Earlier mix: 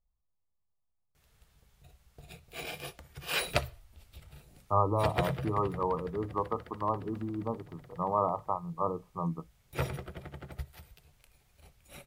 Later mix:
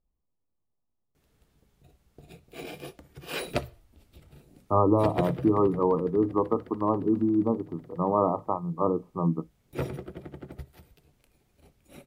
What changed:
background −4.5 dB
master: add parametric band 290 Hz +14.5 dB 1.6 octaves

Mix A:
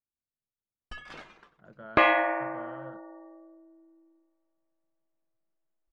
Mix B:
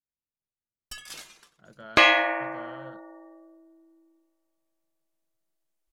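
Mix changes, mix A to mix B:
first sound −5.5 dB
master: remove low-pass filter 1,600 Hz 12 dB per octave

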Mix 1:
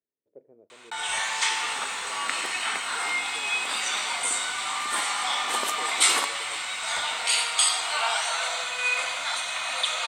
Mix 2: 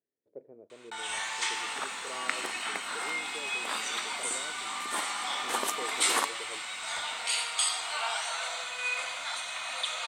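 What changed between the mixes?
speech +3.5 dB
first sound −6.5 dB

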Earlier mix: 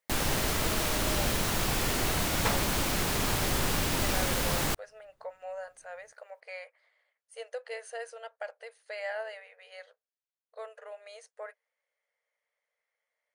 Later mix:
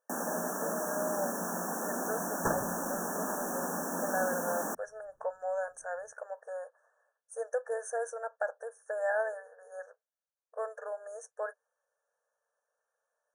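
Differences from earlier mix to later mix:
speech +6.0 dB
first sound: add Chebyshev high-pass with heavy ripple 170 Hz, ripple 6 dB
master: add linear-phase brick-wall band-stop 1,800–5,500 Hz

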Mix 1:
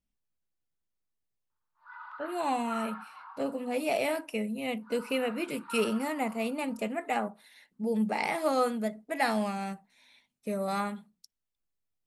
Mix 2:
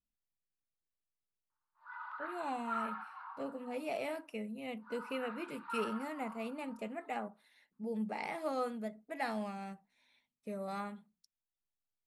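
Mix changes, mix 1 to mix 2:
speech −9.0 dB
master: add high-shelf EQ 4,700 Hz −7 dB

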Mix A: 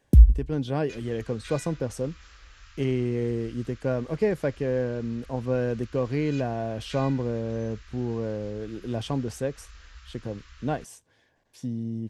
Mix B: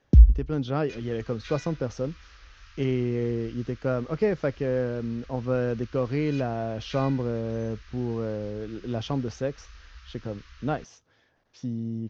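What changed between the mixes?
speech: remove Butterworth band-reject 1,300 Hz, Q 6.2
master: add Butterworth low-pass 6,400 Hz 72 dB per octave

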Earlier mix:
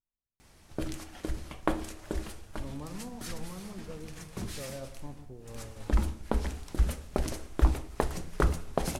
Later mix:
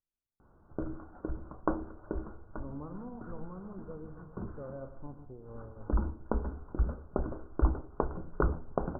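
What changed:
background: send off
master: add Chebyshev low-pass with heavy ripple 1,500 Hz, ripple 3 dB

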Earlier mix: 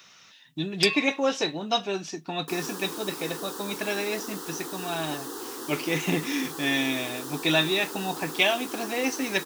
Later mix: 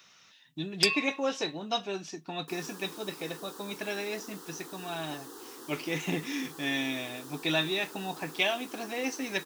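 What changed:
speech −5.5 dB
second sound −9.5 dB

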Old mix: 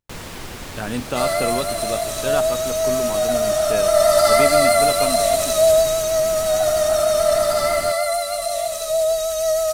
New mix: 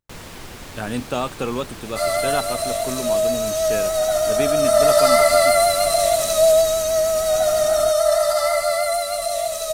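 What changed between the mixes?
first sound −3.5 dB
second sound: entry +0.80 s

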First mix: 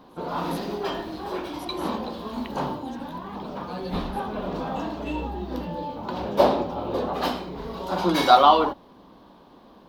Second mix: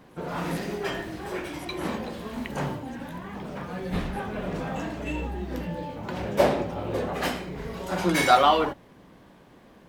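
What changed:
speech −7.0 dB
master: add octave-band graphic EQ 125/250/1,000/2,000/4,000/8,000 Hz +7/−4/−8/+10/−9/+11 dB

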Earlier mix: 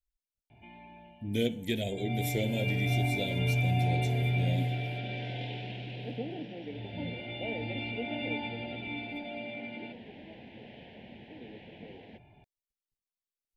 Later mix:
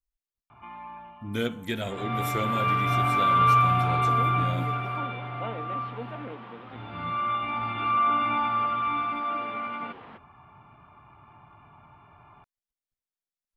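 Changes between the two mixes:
second sound: entry −2.00 s
master: remove Butterworth band-reject 1,200 Hz, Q 0.8

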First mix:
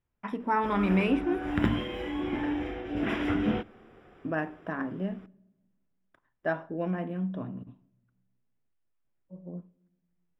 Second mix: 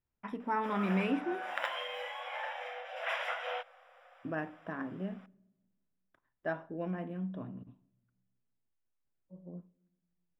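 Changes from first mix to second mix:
speech −6.0 dB
background: add linear-phase brick-wall high-pass 490 Hz

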